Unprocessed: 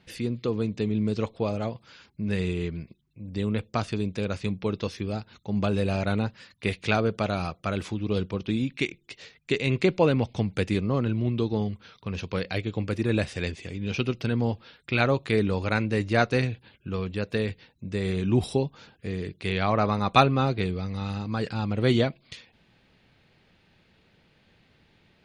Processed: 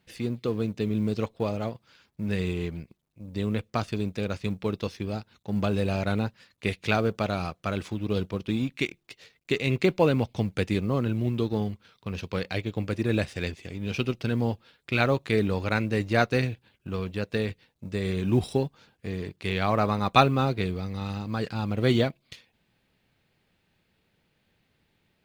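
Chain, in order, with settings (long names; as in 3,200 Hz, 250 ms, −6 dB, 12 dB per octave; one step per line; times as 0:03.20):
mu-law and A-law mismatch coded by A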